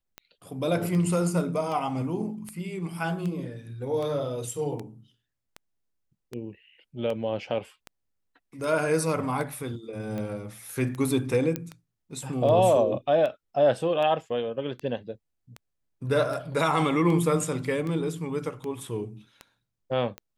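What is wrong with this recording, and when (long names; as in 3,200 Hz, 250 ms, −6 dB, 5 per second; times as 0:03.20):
scratch tick 78 rpm −22 dBFS
0:11.56: click −13 dBFS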